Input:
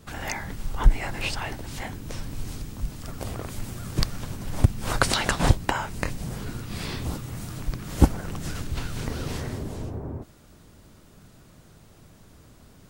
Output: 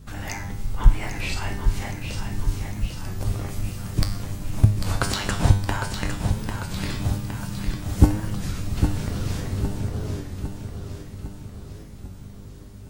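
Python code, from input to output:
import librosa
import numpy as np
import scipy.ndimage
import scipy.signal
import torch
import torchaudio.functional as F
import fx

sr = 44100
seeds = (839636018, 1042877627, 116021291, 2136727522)

p1 = fx.tracing_dist(x, sr, depth_ms=0.021)
p2 = fx.bass_treble(p1, sr, bass_db=7, treble_db=2)
p3 = fx.rider(p2, sr, range_db=3, speed_s=2.0)
p4 = p2 + (p3 * librosa.db_to_amplitude(2.5))
p5 = fx.comb_fb(p4, sr, f0_hz=100.0, decay_s=0.59, harmonics='all', damping=0.0, mix_pct=80)
p6 = fx.add_hum(p5, sr, base_hz=50, snr_db=20)
p7 = fx.doubler(p6, sr, ms=45.0, db=-4, at=(1.24, 1.91))
p8 = p7 + fx.echo_feedback(p7, sr, ms=805, feedback_pct=55, wet_db=-7.0, dry=0)
p9 = fx.record_warp(p8, sr, rpm=33.33, depth_cents=100.0)
y = p9 * librosa.db_to_amplitude(-1.0)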